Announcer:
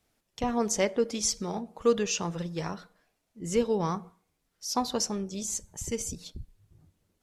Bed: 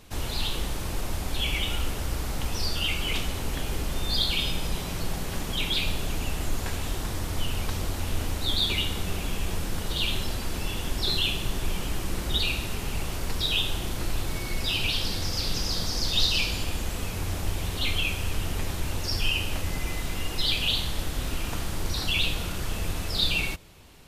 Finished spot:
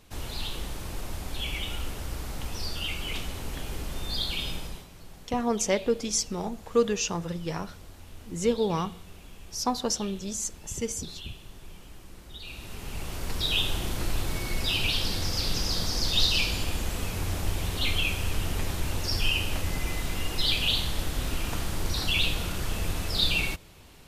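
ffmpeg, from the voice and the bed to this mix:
-filter_complex "[0:a]adelay=4900,volume=1.12[s0];[1:a]volume=4.22,afade=t=out:st=4.53:d=0.35:silence=0.237137,afade=t=in:st=12.4:d=1.23:silence=0.133352[s1];[s0][s1]amix=inputs=2:normalize=0"

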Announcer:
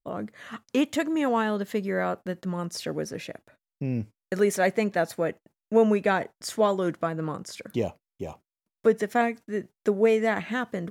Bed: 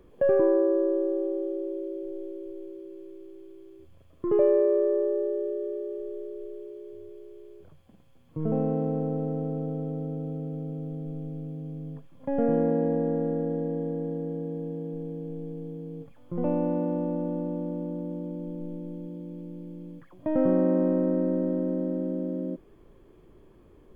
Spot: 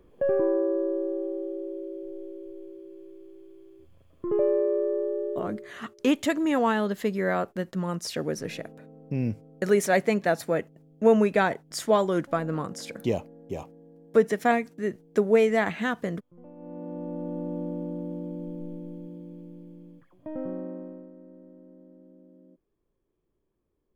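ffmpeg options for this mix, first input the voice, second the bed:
-filter_complex "[0:a]adelay=5300,volume=1.12[s0];[1:a]volume=8.41,afade=t=out:st=5.33:d=0.39:silence=0.112202,afade=t=in:st=16.56:d=1.05:silence=0.0891251,afade=t=out:st=18.44:d=2.67:silence=0.0707946[s1];[s0][s1]amix=inputs=2:normalize=0"

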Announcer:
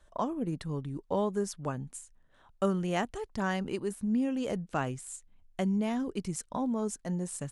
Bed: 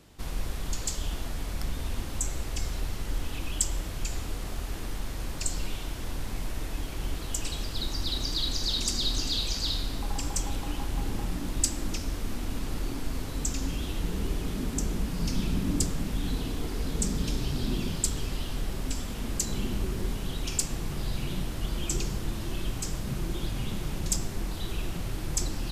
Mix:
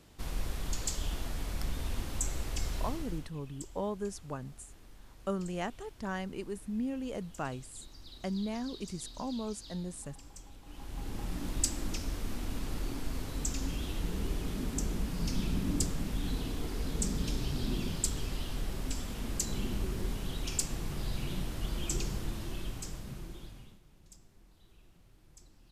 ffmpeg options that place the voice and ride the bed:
-filter_complex "[0:a]adelay=2650,volume=0.531[s0];[1:a]volume=4.73,afade=t=out:st=2.82:d=0.49:silence=0.133352,afade=t=in:st=10.63:d=0.82:silence=0.149624,afade=t=out:st=22.17:d=1.63:silence=0.0595662[s1];[s0][s1]amix=inputs=2:normalize=0"

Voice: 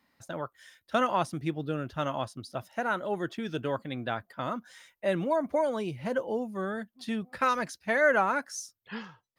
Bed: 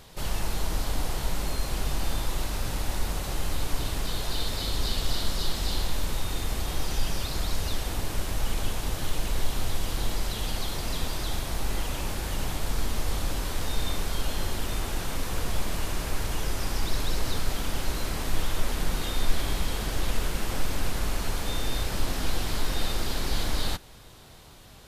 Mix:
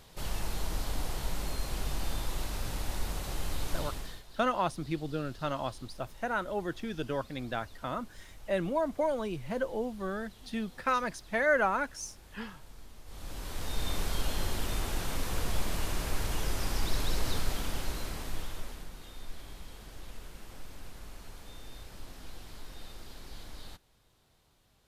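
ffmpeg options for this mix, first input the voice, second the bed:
-filter_complex "[0:a]adelay=3450,volume=0.75[s0];[1:a]volume=5.31,afade=t=out:st=3.78:d=0.45:silence=0.133352,afade=t=in:st=13.05:d=0.97:silence=0.1,afade=t=out:st=17.35:d=1.55:silence=0.16788[s1];[s0][s1]amix=inputs=2:normalize=0"

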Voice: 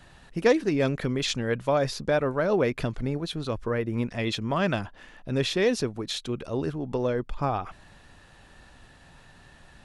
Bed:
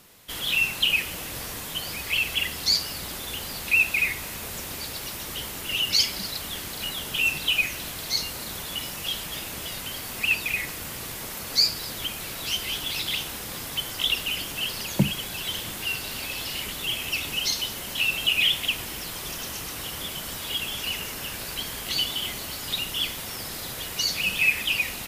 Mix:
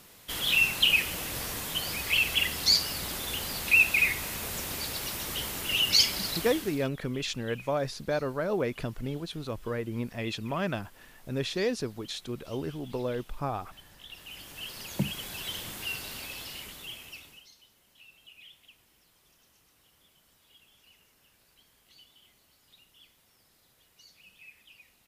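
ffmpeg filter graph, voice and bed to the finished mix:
-filter_complex "[0:a]adelay=6000,volume=0.531[s0];[1:a]volume=7.94,afade=t=out:st=6.33:d=0.55:silence=0.0630957,afade=t=in:st=14.07:d=1.21:silence=0.11885,afade=t=out:st=15.99:d=1.48:silence=0.0562341[s1];[s0][s1]amix=inputs=2:normalize=0"

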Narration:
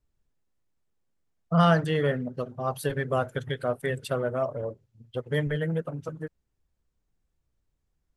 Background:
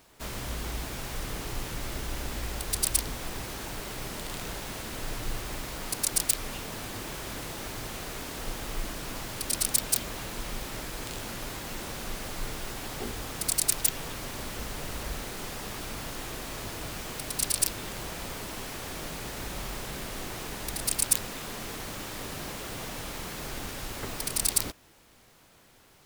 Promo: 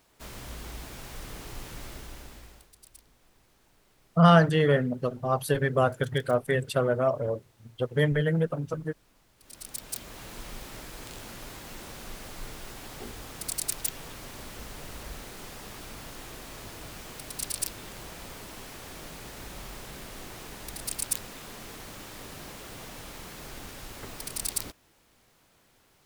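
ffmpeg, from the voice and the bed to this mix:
-filter_complex "[0:a]adelay=2650,volume=1.41[s0];[1:a]volume=6.31,afade=t=out:st=1.81:d=0.9:silence=0.0841395,afade=t=in:st=9.38:d=0.96:silence=0.0794328[s1];[s0][s1]amix=inputs=2:normalize=0"

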